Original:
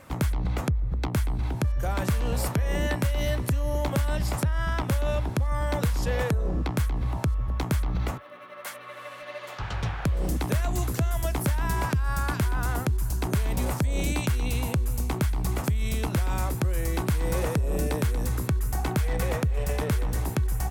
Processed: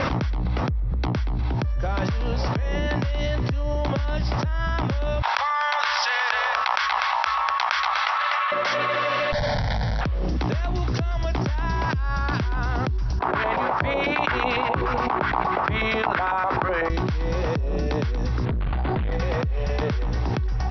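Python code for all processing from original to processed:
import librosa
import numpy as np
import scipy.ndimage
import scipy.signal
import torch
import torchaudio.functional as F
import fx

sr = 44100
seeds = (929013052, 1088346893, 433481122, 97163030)

y = fx.chain(x, sr, fx.cheby2_highpass(hz=350.0, order=4, stop_db=50),
    fx.air_absorb(metres=78.0),
    fx.echo_single(ms=246, db=-10.5), at=(5.22, 8.52))
y = fx.chain(y, sr, fx.schmitt(flips_db=-37.5),
    fx.fixed_phaser(hz=1800.0, stages=8), at=(9.32, 10.01))
y = fx.chain(y, sr, fx.lowpass(hz=4300.0, slope=12),
    fx.filter_lfo_bandpass(shape='saw_up', hz=8.0, low_hz=740.0, high_hz=1700.0, q=1.8),
    fx.hum_notches(base_hz=60, count=7), at=(13.19, 16.9))
y = fx.chain(y, sr, fx.doubler(ms=14.0, db=-10.5),
    fx.tube_stage(drive_db=29.0, bias=0.55),
    fx.resample_linear(factor=8), at=(18.45, 19.12))
y = scipy.signal.sosfilt(scipy.signal.cheby1(8, 1.0, 5700.0, 'lowpass', fs=sr, output='sos'), y)
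y = fx.env_flatten(y, sr, amount_pct=100)
y = y * 10.0 ** (-1.0 / 20.0)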